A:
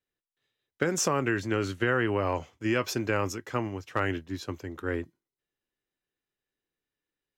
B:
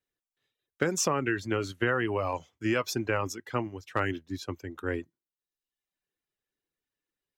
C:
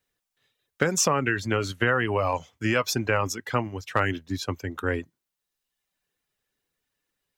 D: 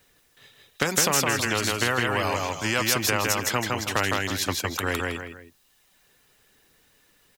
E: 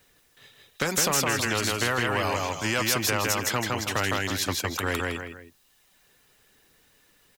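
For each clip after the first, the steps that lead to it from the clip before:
reverb removal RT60 0.87 s
bell 340 Hz -6.5 dB 0.48 oct; in parallel at +1 dB: compressor, threshold -36 dBFS, peak gain reduction 12.5 dB; on the sum: gain +3 dB
on a send: feedback echo 0.161 s, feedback 16%, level -4 dB; on the sum: spectral compressor 2:1; gain +1.5 dB
soft clip -15 dBFS, distortion -16 dB

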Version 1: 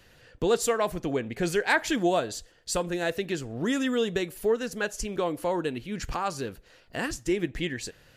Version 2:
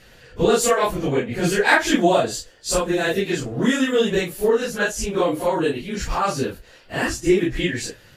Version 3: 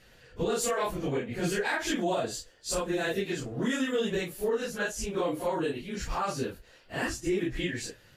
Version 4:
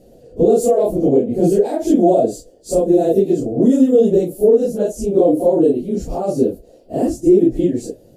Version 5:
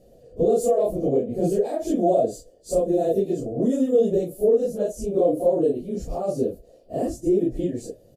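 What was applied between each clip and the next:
phase scrambler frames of 0.1 s; gain +8 dB
limiter -11.5 dBFS, peak gain reduction 8.5 dB; gain -8.5 dB
EQ curve 120 Hz 0 dB, 270 Hz +11 dB, 690 Hz +8 dB, 970 Hz -14 dB, 1700 Hz -25 dB, 9400 Hz -2 dB; gain +8 dB
comb 1.7 ms, depth 33%; gain -7 dB

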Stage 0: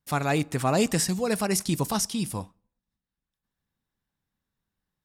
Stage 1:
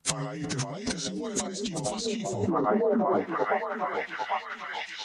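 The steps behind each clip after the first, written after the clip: inharmonic rescaling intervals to 90%; on a send: delay with a stepping band-pass 0.799 s, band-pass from 360 Hz, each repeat 0.7 oct, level -3 dB; on the sum: negative-ratio compressor -38 dBFS, ratio -1; gain +8 dB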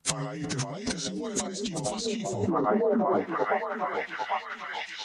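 nothing audible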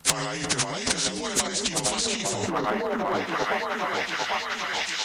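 low shelf 240 Hz -5 dB; in parallel at -10.5 dB: hard clip -19.5 dBFS, distortion -23 dB; on the sum: spectral compressor 2:1; gain +3 dB

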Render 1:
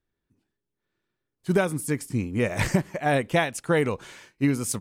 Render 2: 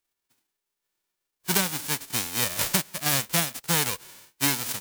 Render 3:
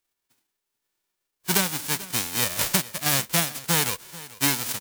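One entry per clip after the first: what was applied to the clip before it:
spectral whitening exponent 0.1; gain -2 dB
echo 0.438 s -18.5 dB; gain +1.5 dB

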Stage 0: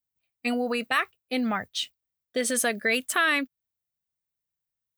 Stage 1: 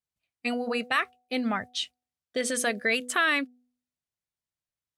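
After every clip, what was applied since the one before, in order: LPF 9100 Hz 12 dB/oct; de-hum 247.2 Hz, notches 3; gain -1 dB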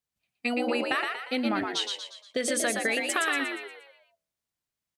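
compressor, threshold -27 dBFS, peak gain reduction 7.5 dB; on a send: frequency-shifting echo 0.118 s, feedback 46%, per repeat +68 Hz, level -4 dB; on the sum: gain +2.5 dB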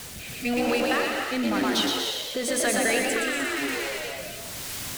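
zero-crossing step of -26.5 dBFS; rotary speaker horn 1 Hz; non-linear reverb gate 0.33 s rising, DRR 3 dB

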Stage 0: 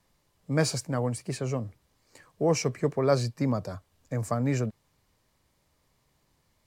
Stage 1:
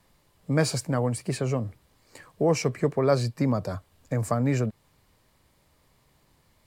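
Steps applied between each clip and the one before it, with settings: bell 6000 Hz -4.5 dB 0.47 oct; in parallel at +2.5 dB: compressor, threshold -32 dBFS, peak gain reduction 14 dB; on the sum: gain -1 dB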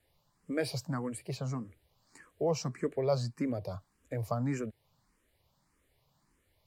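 endless phaser +1.7 Hz; gain -6 dB

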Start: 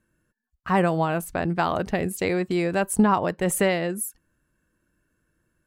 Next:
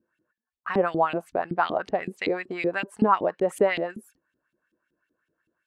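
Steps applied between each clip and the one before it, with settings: LFO band-pass saw up 5.3 Hz 260–3700 Hz; gain +5.5 dB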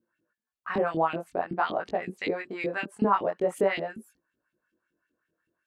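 chorus 0.48 Hz, delay 17 ms, depth 7.9 ms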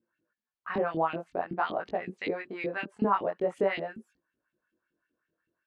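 LPF 4500 Hz 12 dB/oct; gain -2.5 dB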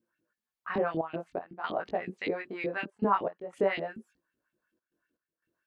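step gate "xxxxxxxx.xx..xx" 119 bpm -12 dB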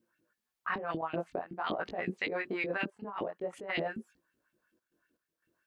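negative-ratio compressor -35 dBFS, ratio -1

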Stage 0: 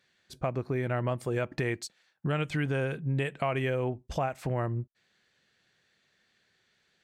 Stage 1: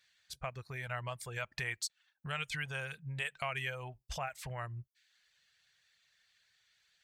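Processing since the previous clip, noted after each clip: reverb removal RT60 0.5 s; passive tone stack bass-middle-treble 10-0-10; gain +3.5 dB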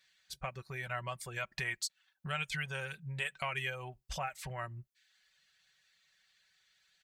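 comb 5.3 ms, depth 50%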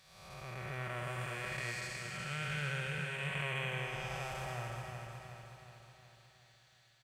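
time blur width 0.449 s; feedback echo 0.368 s, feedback 55%, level -5 dB; gain +4.5 dB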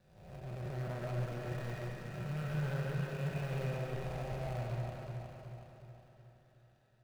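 median filter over 41 samples; on a send at -2 dB: reverb RT60 0.65 s, pre-delay 0.1 s; on the sum: gain +4 dB

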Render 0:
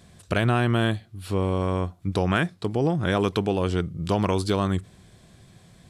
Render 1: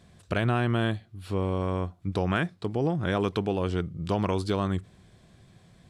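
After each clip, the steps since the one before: high shelf 6300 Hz -8 dB; gain -3.5 dB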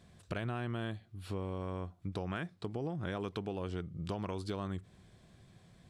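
compressor 3:1, threshold -32 dBFS, peak gain reduction 8.5 dB; gain -4.5 dB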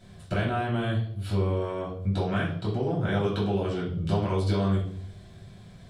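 reverb RT60 0.65 s, pre-delay 3 ms, DRR -5.5 dB; gain +2 dB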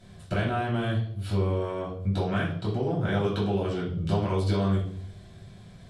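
SBC 128 kbps 48000 Hz

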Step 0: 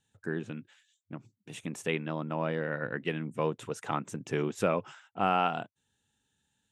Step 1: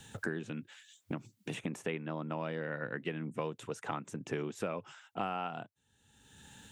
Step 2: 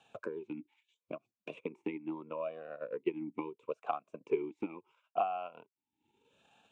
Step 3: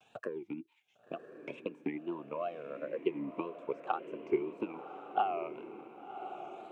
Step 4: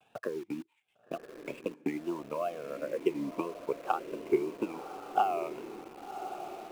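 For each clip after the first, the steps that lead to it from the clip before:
three-band squash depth 100%; gain -6 dB
transient shaper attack +7 dB, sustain -9 dB; vowel sweep a-u 0.76 Hz; gain +6 dB
wow and flutter 150 cents; diffused feedback echo 1.088 s, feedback 50%, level -10 dB; gain +1 dB
median filter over 9 samples; in parallel at -6 dB: requantised 8-bit, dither none

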